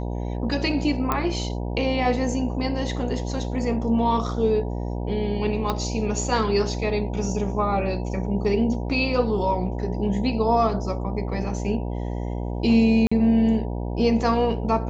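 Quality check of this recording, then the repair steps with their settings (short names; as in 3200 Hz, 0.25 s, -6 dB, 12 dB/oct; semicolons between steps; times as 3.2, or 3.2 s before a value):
buzz 60 Hz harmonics 16 -28 dBFS
1.12 pop -9 dBFS
5.7 pop -11 dBFS
13.07–13.12 gap 45 ms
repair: de-click; de-hum 60 Hz, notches 16; interpolate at 13.07, 45 ms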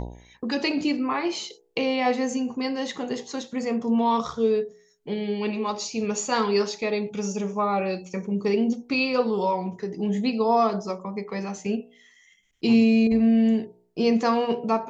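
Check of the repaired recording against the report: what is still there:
5.7 pop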